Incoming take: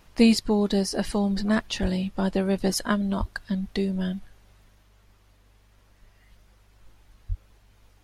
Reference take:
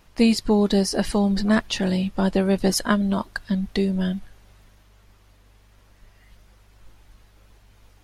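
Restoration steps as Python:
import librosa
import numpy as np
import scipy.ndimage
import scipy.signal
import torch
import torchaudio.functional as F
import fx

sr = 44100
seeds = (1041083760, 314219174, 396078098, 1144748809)

y = fx.highpass(x, sr, hz=140.0, slope=24, at=(1.81, 1.93), fade=0.02)
y = fx.highpass(y, sr, hz=140.0, slope=24, at=(3.19, 3.31), fade=0.02)
y = fx.highpass(y, sr, hz=140.0, slope=24, at=(7.28, 7.4), fade=0.02)
y = fx.gain(y, sr, db=fx.steps((0.0, 0.0), (0.39, 4.0)))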